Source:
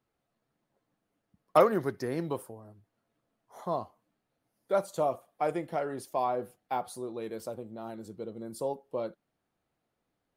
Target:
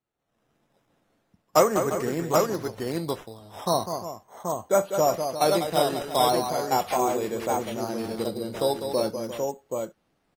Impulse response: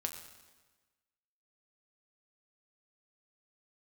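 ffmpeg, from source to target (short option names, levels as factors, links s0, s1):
-filter_complex "[0:a]aecho=1:1:46|199|350|779:0.141|0.398|0.237|0.596,dynaudnorm=f=130:g=5:m=5.96,asplit=3[s0][s1][s2];[s0]afade=t=out:st=3.71:d=0.02[s3];[s1]lowpass=f=4100:w=0.5412,lowpass=f=4100:w=1.3066,afade=t=in:st=3.71:d=0.02,afade=t=out:st=4.97:d=0.02[s4];[s2]afade=t=in:st=4.97:d=0.02[s5];[s3][s4][s5]amix=inputs=3:normalize=0,acrusher=samples=8:mix=1:aa=0.000001:lfo=1:lforange=4.8:lforate=0.38,volume=0.447" -ar 48000 -c:a aac -b:a 48k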